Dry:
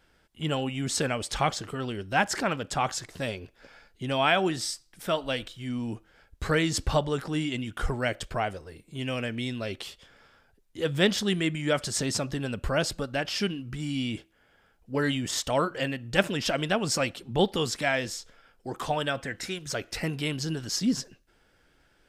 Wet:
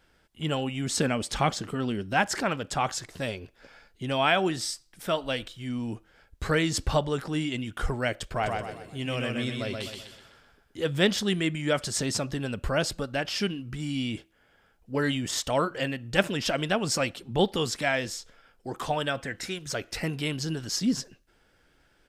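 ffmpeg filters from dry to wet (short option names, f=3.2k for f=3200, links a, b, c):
-filter_complex "[0:a]asettb=1/sr,asplit=3[a][b][c];[a]atrim=end=0.974[d];[b]atrim=start=0.97:end=2.14,asetpts=PTS-STARTPTS,afade=t=in:d=0.004:c=qsin,afade=t=out:st=1.166:d=0.004:c=qsin,equalizer=f=220:w=1.5:g=7[e];[c]atrim=start=2.136[f];[d][e]acrossfade=d=0.004:c1=hsin:c2=qsin[g];[g][f]acrossfade=d=0.004:c1=qsin:c2=hsin,asplit=3[h][i][j];[h]afade=t=out:st=8.36:d=0.02[k];[i]aecho=1:1:126|252|378|504|630:0.668|0.274|0.112|0.0461|0.0189,afade=t=in:st=8.36:d=0.02,afade=t=out:st=10.79:d=0.02[l];[j]afade=t=in:st=10.79:d=0.02[m];[k][l][m]amix=inputs=3:normalize=0"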